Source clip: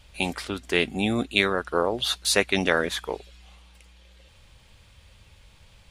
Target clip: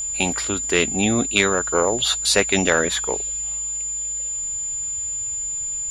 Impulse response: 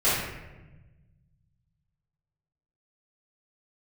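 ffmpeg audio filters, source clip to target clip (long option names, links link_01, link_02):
-af "acontrast=78,lowpass=9800,aeval=exprs='val(0)+0.0794*sin(2*PI*7100*n/s)':channel_layout=same,volume=-2dB"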